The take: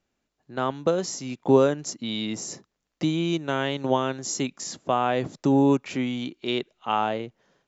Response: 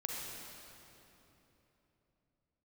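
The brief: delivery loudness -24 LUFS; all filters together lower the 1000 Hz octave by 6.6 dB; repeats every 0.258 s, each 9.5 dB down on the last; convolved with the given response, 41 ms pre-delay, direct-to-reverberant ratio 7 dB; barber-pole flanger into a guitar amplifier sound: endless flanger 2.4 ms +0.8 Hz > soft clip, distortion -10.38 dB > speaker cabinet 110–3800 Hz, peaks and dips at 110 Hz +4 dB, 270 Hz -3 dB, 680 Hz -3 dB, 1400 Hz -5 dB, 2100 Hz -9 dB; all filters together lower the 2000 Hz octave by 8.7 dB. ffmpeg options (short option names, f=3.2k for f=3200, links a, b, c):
-filter_complex "[0:a]equalizer=f=1k:t=o:g=-5.5,equalizer=f=2k:t=o:g=-4,aecho=1:1:258|516|774|1032:0.335|0.111|0.0365|0.012,asplit=2[a][b];[1:a]atrim=start_sample=2205,adelay=41[c];[b][c]afir=irnorm=-1:irlink=0,volume=-8.5dB[d];[a][d]amix=inputs=2:normalize=0,asplit=2[e][f];[f]adelay=2.4,afreqshift=0.8[g];[e][g]amix=inputs=2:normalize=1,asoftclip=threshold=-22.5dB,highpass=110,equalizer=f=110:t=q:w=4:g=4,equalizer=f=270:t=q:w=4:g=-3,equalizer=f=680:t=q:w=4:g=-3,equalizer=f=1.4k:t=q:w=4:g=-5,equalizer=f=2.1k:t=q:w=4:g=-9,lowpass=f=3.8k:w=0.5412,lowpass=f=3.8k:w=1.3066,volume=9dB"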